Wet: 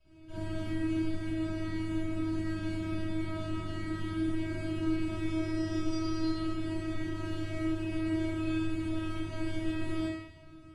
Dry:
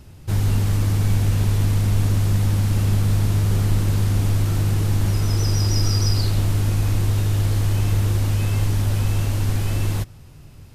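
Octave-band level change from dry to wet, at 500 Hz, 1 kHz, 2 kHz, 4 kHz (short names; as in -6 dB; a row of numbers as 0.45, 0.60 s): -4.5, -10.0, -7.5, -15.0 dB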